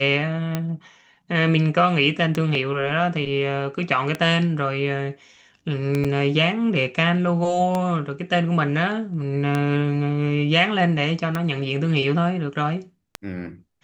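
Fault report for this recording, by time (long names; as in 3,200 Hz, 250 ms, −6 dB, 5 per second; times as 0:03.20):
scratch tick 33 1/3 rpm −10 dBFS
0:06.04–0:06.05: drop-out 6.1 ms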